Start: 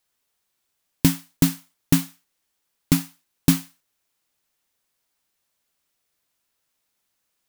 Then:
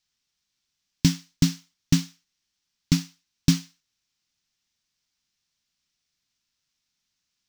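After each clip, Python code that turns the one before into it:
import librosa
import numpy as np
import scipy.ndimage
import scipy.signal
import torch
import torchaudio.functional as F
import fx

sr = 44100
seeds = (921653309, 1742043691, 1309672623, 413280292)

y = fx.curve_eq(x, sr, hz=(200.0, 510.0, 5700.0, 10000.0), db=(0, -14, 4, -15))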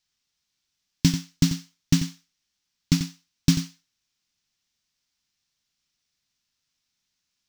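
y = x + 10.0 ** (-9.5 / 20.0) * np.pad(x, (int(90 * sr / 1000.0), 0))[:len(x)]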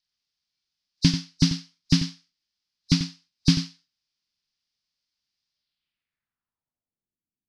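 y = fx.freq_compress(x, sr, knee_hz=3700.0, ratio=1.5)
y = fx.noise_reduce_blind(y, sr, reduce_db=7)
y = fx.filter_sweep_lowpass(y, sr, from_hz=5800.0, to_hz=320.0, start_s=5.5, end_s=7.25, q=1.9)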